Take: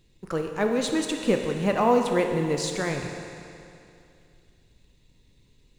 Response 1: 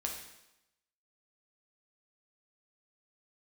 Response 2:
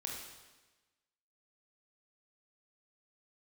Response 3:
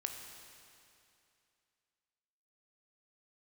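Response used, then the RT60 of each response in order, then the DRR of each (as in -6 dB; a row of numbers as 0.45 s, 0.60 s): 3; 0.90 s, 1.2 s, 2.6 s; 0.0 dB, -1.5 dB, 3.5 dB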